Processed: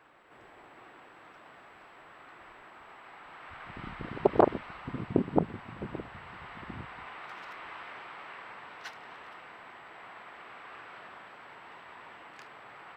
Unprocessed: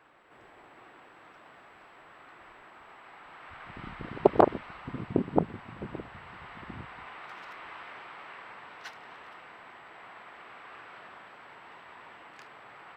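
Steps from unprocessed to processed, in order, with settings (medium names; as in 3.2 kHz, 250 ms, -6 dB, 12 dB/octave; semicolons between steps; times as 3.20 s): loudness maximiser +7 dB; trim -6.5 dB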